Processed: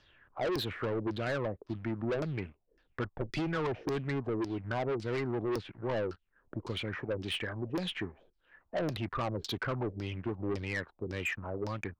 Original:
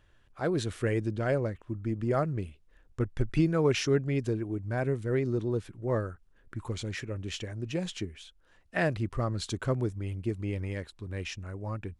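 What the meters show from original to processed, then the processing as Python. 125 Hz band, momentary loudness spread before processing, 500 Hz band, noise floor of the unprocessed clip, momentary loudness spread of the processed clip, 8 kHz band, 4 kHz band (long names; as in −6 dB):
−7.0 dB, 11 LU, −3.5 dB, −63 dBFS, 6 LU, −9.5 dB, +0.5 dB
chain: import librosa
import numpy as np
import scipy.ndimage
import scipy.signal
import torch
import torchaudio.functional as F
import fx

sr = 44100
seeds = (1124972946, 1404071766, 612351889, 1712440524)

y = fx.low_shelf(x, sr, hz=110.0, db=-9.5)
y = fx.leveller(y, sr, passes=2)
y = fx.filter_lfo_lowpass(y, sr, shape='saw_down', hz=1.8, low_hz=340.0, high_hz=5300.0, q=5.1)
y = 10.0 ** (-22.0 / 20.0) * np.tanh(y / 10.0 ** (-22.0 / 20.0))
y = fx.band_squash(y, sr, depth_pct=40)
y = F.gain(torch.from_numpy(y), -7.0).numpy()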